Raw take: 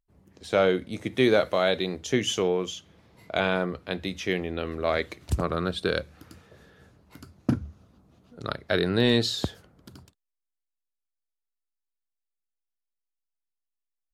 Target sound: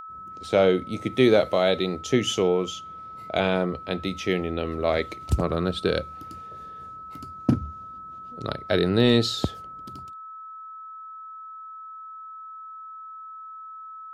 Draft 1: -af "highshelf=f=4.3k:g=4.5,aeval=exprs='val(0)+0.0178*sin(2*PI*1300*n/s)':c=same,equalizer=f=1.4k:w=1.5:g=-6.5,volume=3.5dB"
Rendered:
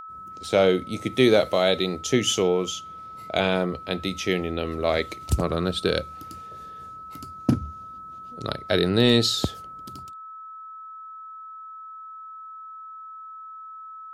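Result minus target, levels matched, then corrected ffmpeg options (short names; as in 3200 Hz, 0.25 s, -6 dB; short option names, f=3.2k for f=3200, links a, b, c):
8000 Hz band +6.0 dB
-af "highshelf=f=4.3k:g=-4.5,aeval=exprs='val(0)+0.0178*sin(2*PI*1300*n/s)':c=same,equalizer=f=1.4k:w=1.5:g=-6.5,volume=3.5dB"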